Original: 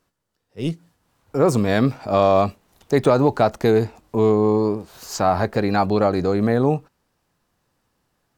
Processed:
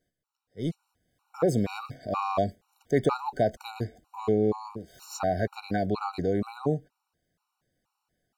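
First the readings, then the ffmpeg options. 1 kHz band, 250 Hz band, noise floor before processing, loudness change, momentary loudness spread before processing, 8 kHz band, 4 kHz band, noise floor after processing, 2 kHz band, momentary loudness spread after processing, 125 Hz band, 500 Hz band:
-9.5 dB, -10.0 dB, -72 dBFS, -9.5 dB, 11 LU, -9.0 dB, -10.0 dB, -84 dBFS, -10.5 dB, 11 LU, -9.5 dB, -10.0 dB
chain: -af "afftfilt=real='re*gt(sin(2*PI*2.1*pts/sr)*(1-2*mod(floor(b*sr/1024/750),2)),0)':imag='im*gt(sin(2*PI*2.1*pts/sr)*(1-2*mod(floor(b*sr/1024/750),2)),0)':win_size=1024:overlap=0.75,volume=-6dB"

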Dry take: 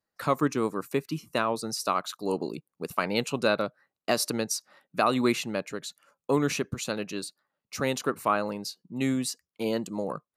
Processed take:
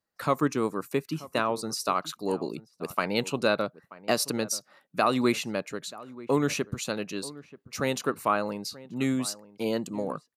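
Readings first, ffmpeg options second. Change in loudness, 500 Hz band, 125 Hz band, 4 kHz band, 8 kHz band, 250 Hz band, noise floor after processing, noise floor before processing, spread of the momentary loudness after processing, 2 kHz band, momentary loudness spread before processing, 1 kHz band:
0.0 dB, 0.0 dB, 0.0 dB, 0.0 dB, 0.0 dB, 0.0 dB, -71 dBFS, under -85 dBFS, 11 LU, 0.0 dB, 11 LU, 0.0 dB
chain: -filter_complex "[0:a]asplit=2[a][b];[b]adelay=932.9,volume=-18dB,highshelf=f=4k:g=-21[c];[a][c]amix=inputs=2:normalize=0"

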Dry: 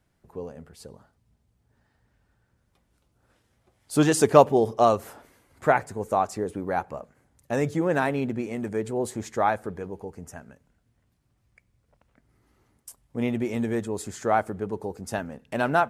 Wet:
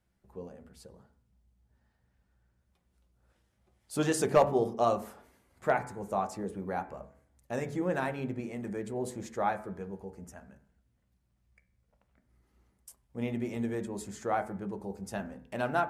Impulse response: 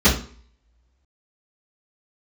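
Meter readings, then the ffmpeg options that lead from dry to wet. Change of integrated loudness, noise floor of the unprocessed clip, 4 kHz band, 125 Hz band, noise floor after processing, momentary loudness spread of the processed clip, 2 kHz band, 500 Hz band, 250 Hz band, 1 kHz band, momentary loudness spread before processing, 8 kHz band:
-7.5 dB, -70 dBFS, -7.5 dB, -7.5 dB, -75 dBFS, 18 LU, -7.5 dB, -7.5 dB, -7.5 dB, -7.5 dB, 18 LU, -7.5 dB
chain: -filter_complex "[0:a]bandreject=f=71.74:t=h:w=4,bandreject=f=143.48:t=h:w=4,bandreject=f=215.22:t=h:w=4,bandreject=f=286.96:t=h:w=4,bandreject=f=358.7:t=h:w=4,bandreject=f=430.44:t=h:w=4,bandreject=f=502.18:t=h:w=4,bandreject=f=573.92:t=h:w=4,bandreject=f=645.66:t=h:w=4,bandreject=f=717.4:t=h:w=4,bandreject=f=789.14:t=h:w=4,bandreject=f=860.88:t=h:w=4,bandreject=f=932.62:t=h:w=4,bandreject=f=1.00436k:t=h:w=4,bandreject=f=1.0761k:t=h:w=4,bandreject=f=1.14784k:t=h:w=4,bandreject=f=1.21958k:t=h:w=4,bandreject=f=1.29132k:t=h:w=4,bandreject=f=1.36306k:t=h:w=4,bandreject=f=1.4348k:t=h:w=4,bandreject=f=1.50654k:t=h:w=4,bandreject=f=1.57828k:t=h:w=4,bandreject=f=1.65002k:t=h:w=4,bandreject=f=1.72176k:t=h:w=4,bandreject=f=1.7935k:t=h:w=4,bandreject=f=1.86524k:t=h:w=4,bandreject=f=1.93698k:t=h:w=4,bandreject=f=2.00872k:t=h:w=4,bandreject=f=2.08046k:t=h:w=4,bandreject=f=2.1522k:t=h:w=4,bandreject=f=2.22394k:t=h:w=4,bandreject=f=2.29568k:t=h:w=4,bandreject=f=2.36742k:t=h:w=4,asoftclip=type=hard:threshold=-6.5dB,asplit=2[a][b];[1:a]atrim=start_sample=2205,lowpass=2.6k[c];[b][c]afir=irnorm=-1:irlink=0,volume=-31dB[d];[a][d]amix=inputs=2:normalize=0,volume=-7.5dB"

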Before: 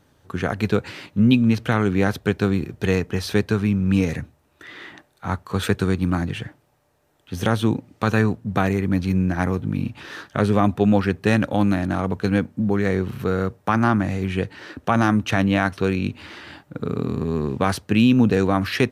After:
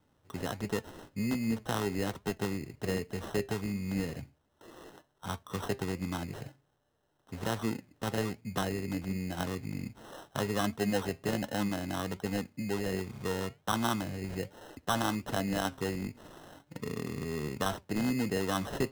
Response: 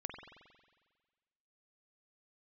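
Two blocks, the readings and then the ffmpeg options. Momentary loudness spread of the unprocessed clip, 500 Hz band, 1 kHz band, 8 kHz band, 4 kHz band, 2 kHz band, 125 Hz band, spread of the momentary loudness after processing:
12 LU, -11.5 dB, -11.0 dB, -2.5 dB, -7.5 dB, -12.5 dB, -15.0 dB, 12 LU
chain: -filter_complex "[0:a]acrossover=split=310|3000[a][b][c];[a]acompressor=threshold=-26dB:ratio=2[d];[d][b][c]amix=inputs=3:normalize=0,acrusher=samples=19:mix=1:aa=0.000001,flanger=delay=4.4:depth=3.1:regen=82:speed=1.3:shape=sinusoidal,volume=-6.5dB"

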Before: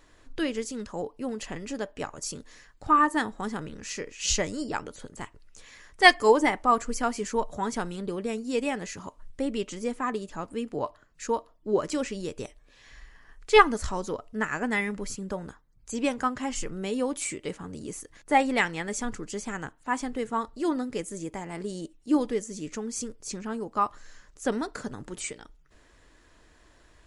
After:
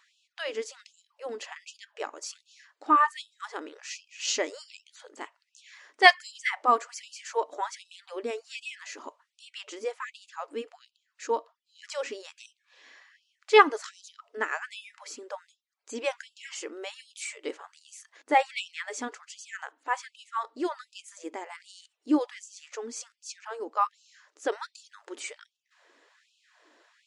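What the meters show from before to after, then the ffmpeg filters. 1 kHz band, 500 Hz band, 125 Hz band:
-1.0 dB, -3.5 dB, under -30 dB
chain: -af "lowpass=5.9k,afftfilt=real='re*gte(b*sr/1024,240*pow(2600/240,0.5+0.5*sin(2*PI*1.3*pts/sr)))':imag='im*gte(b*sr/1024,240*pow(2600/240,0.5+0.5*sin(2*PI*1.3*pts/sr)))':win_size=1024:overlap=0.75"

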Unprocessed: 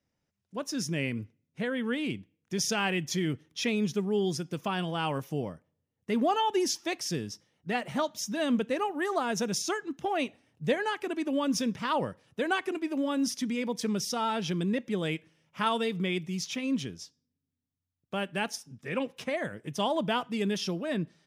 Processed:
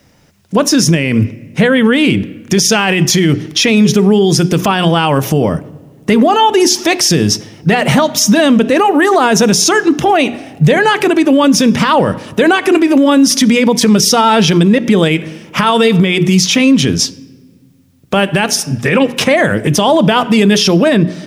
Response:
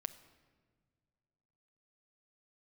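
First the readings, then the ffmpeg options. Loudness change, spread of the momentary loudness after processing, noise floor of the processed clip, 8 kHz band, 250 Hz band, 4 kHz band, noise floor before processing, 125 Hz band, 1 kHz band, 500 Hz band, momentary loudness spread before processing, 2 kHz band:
+20.5 dB, 5 LU, -44 dBFS, +22.0 dB, +21.0 dB, +21.0 dB, -84 dBFS, +22.5 dB, +19.0 dB, +20.0 dB, 8 LU, +20.0 dB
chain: -filter_complex "[0:a]acompressor=threshold=-34dB:ratio=4,bandreject=f=60:t=h:w=6,bandreject=f=120:t=h:w=6,bandreject=f=180:t=h:w=6,bandreject=f=240:t=h:w=6,bandreject=f=300:t=h:w=6,bandreject=f=360:t=h:w=6,bandreject=f=420:t=h:w=6,asplit=2[a][b];[1:a]atrim=start_sample=2205[c];[b][c]afir=irnorm=-1:irlink=0,volume=-5dB[d];[a][d]amix=inputs=2:normalize=0,alimiter=level_in=30dB:limit=-1dB:release=50:level=0:latency=1,volume=-1dB"

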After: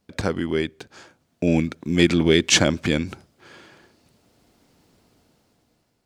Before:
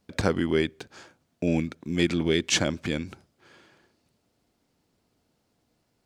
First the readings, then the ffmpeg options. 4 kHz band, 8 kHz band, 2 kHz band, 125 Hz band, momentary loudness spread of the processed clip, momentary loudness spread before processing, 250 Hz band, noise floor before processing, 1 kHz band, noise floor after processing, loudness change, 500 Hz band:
+6.5 dB, +7.0 dB, +6.0 dB, +5.5 dB, 10 LU, 11 LU, +5.5 dB, -73 dBFS, +4.0 dB, -70 dBFS, +5.5 dB, +5.0 dB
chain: -af "dynaudnorm=f=350:g=7:m=13dB"

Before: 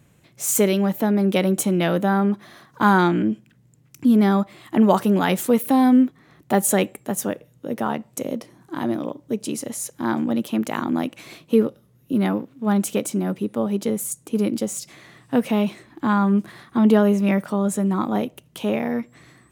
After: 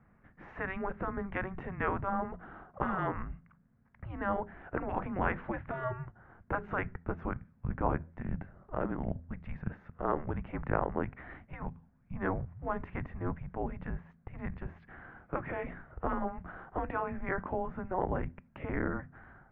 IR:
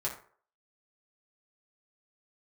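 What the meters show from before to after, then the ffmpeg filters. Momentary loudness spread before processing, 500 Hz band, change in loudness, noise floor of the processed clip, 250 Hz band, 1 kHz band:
12 LU, -14.5 dB, -15.5 dB, -65 dBFS, -20.5 dB, -10.5 dB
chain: -af "afftfilt=real='re*lt(hypot(re,im),0.282)':imag='im*lt(hypot(re,im),0.282)':win_size=1024:overlap=0.75,highpass=f=210:t=q:w=0.5412,highpass=f=210:t=q:w=1.307,lowpass=f=2.2k:t=q:w=0.5176,lowpass=f=2.2k:t=q:w=0.7071,lowpass=f=2.2k:t=q:w=1.932,afreqshift=-380,bandreject=f=83.65:t=h:w=4,bandreject=f=167.3:t=h:w=4,bandreject=f=250.95:t=h:w=4,volume=-1.5dB"

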